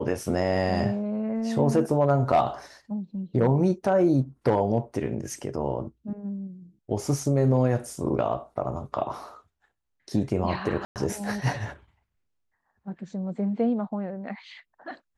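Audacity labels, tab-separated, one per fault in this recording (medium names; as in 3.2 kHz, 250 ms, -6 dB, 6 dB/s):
10.850000	10.960000	dropout 108 ms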